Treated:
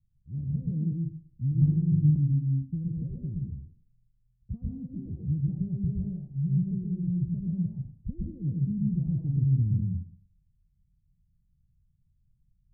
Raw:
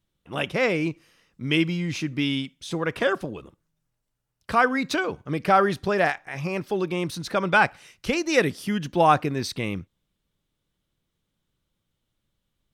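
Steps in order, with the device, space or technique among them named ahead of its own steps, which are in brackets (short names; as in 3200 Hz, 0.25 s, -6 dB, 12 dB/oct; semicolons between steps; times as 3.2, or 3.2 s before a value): club heard from the street (limiter -15.5 dBFS, peak gain reduction 9.5 dB; LPF 140 Hz 24 dB/oct; reverb RT60 0.55 s, pre-delay 0.116 s, DRR -2.5 dB); 1.6–2.16 flutter echo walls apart 3.4 m, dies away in 1 s; gain +8 dB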